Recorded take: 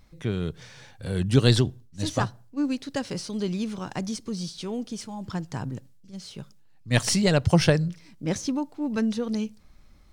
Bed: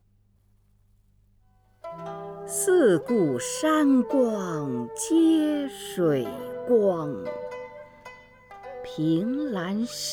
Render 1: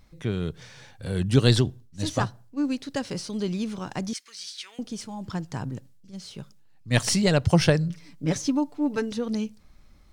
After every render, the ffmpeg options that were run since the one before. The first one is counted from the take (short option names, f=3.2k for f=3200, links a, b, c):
-filter_complex "[0:a]asettb=1/sr,asplit=3[a][b][c];[a]atrim=end=4.134[d];[b]atrim=start=4.13:end=4.79,asetpts=PTS-STARTPTS,afade=t=in:d=0.004:c=qsin,afade=t=out:st=0.656:d=0.004:c=qsin,highpass=f=1.9k:t=q:w=2.3[e];[c]atrim=start=4.786[f];[d][e]acrossfade=d=0.004:c1=hsin:c2=qsin[g];[g][f]acrossfade=d=0.004:c1=qsin:c2=hsin,asettb=1/sr,asplit=3[h][i][j];[h]atrim=end=7.894[k];[i]atrim=start=7.89:end=9.12,asetpts=PTS-STARTPTS,afade=t=in:d=0.004:c=qsin,afade=t=out:st=1.226:d=0.004:c=qsin,aecho=1:1:6.9:0.65,atrim=end_sample=54243[l];[j]atrim=start=9.116[m];[k][l]acrossfade=d=0.004:c1=hsin:c2=qsin[n];[n][m]acrossfade=d=0.004:c1=qsin:c2=hsin"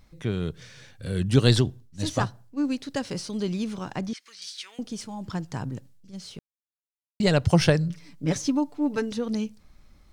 -filter_complex "[0:a]asettb=1/sr,asplit=3[a][b][c];[a]atrim=end=0.554[d];[b]atrim=start=0.55:end=1.25,asetpts=PTS-STARTPTS,afade=t=in:d=0.004:c=qsin,afade=t=out:st=0.696:d=0.004:c=qsin,equalizer=f=840:t=o:w=0.57:g=-10[e];[c]atrim=start=1.246[f];[d][e]acrossfade=d=0.004:c1=hsin:c2=qsin[g];[g][f]acrossfade=d=0.004:c1=qsin:c2=hsin,asettb=1/sr,asplit=3[h][i][j];[h]atrim=end=3.854[k];[i]atrim=start=3.85:end=4.42,asetpts=PTS-STARTPTS,afade=t=in:d=0.004:c=qsin,afade=t=out:st=0.566:d=0.004:c=qsin,acrossover=split=4100[l][m];[m]acompressor=threshold=-52dB:ratio=4:attack=1:release=60[n];[l][n]amix=inputs=2:normalize=0[o];[j]atrim=start=4.416[p];[k][o]acrossfade=d=0.004:c1=hsin:c2=qsin[q];[q][p]acrossfade=d=0.004:c1=qsin:c2=hsin,asplit=3[r][s][t];[r]atrim=end=6.39,asetpts=PTS-STARTPTS,afade=t=out:st=6.386:d=0.004:c=hsin[u];[s]atrim=start=6.39:end=7.2,asetpts=PTS-STARTPTS,volume=0[v];[t]atrim=start=7.2,asetpts=PTS-STARTPTS,afade=t=in:d=0.004:c=hsin[w];[u][v][w]concat=n=3:v=0:a=1"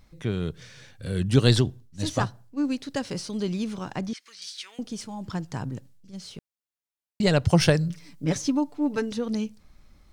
-filter_complex "[0:a]asettb=1/sr,asplit=3[a][b][c];[a]atrim=end=7.604[d];[b]atrim=start=7.6:end=8.25,asetpts=PTS-STARTPTS,afade=t=in:d=0.004:c=qsin,afade=t=out:st=0.646:d=0.004:c=qsin,highshelf=f=6.8k:g=6[e];[c]atrim=start=8.246[f];[d][e]acrossfade=d=0.004:c1=hsin:c2=qsin[g];[g][f]acrossfade=d=0.004:c1=qsin:c2=hsin"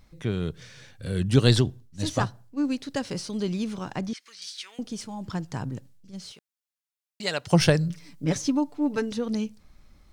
-filter_complex "[0:a]asettb=1/sr,asplit=3[a][b][c];[a]atrim=end=6.324[d];[b]atrim=start=6.32:end=7.51,asetpts=PTS-STARTPTS,afade=t=in:d=0.004:c=qsin,afade=t=out:st=1.186:d=0.004:c=qsin,highpass=f=1.2k:p=1[e];[c]atrim=start=7.506[f];[d][e]acrossfade=d=0.004:c1=hsin:c2=qsin[g];[g][f]acrossfade=d=0.004:c1=qsin:c2=hsin"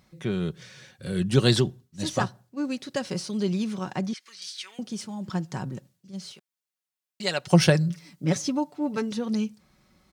-af "highpass=100,aecho=1:1:5.4:0.41"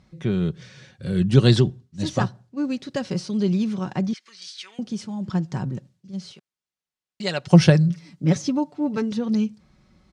-af "lowpass=6.9k,lowshelf=f=290:g=8"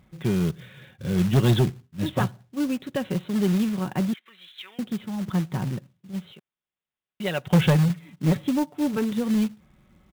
-af "aresample=8000,asoftclip=type=tanh:threshold=-12.5dB,aresample=44100,acrusher=bits=4:mode=log:mix=0:aa=0.000001"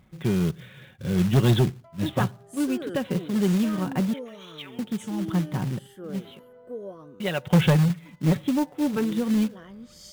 -filter_complex "[1:a]volume=-16dB[a];[0:a][a]amix=inputs=2:normalize=0"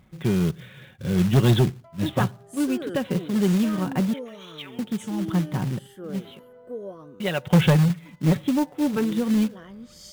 -af "volume=1.5dB"